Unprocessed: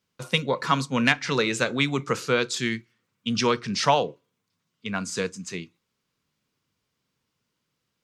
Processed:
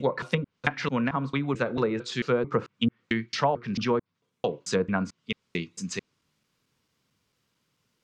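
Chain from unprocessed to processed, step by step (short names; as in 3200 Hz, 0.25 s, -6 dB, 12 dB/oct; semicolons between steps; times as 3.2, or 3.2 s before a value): slices in reverse order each 0.222 s, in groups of 3; vocal rider within 4 dB 0.5 s; treble ducked by the level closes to 850 Hz, closed at -19.5 dBFS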